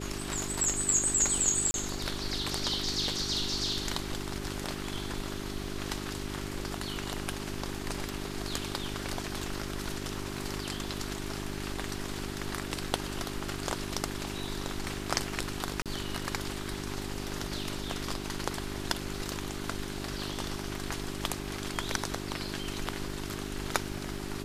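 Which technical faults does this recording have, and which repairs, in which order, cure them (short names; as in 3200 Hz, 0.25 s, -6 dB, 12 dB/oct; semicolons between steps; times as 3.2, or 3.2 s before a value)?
hum 50 Hz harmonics 8 -39 dBFS
1.71–1.74 gap 31 ms
15.82–15.86 gap 37 ms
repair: de-hum 50 Hz, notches 8; interpolate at 1.71, 31 ms; interpolate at 15.82, 37 ms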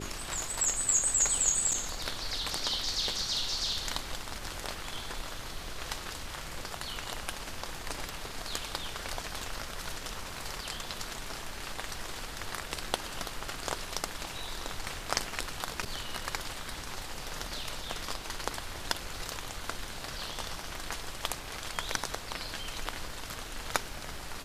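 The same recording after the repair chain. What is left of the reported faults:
none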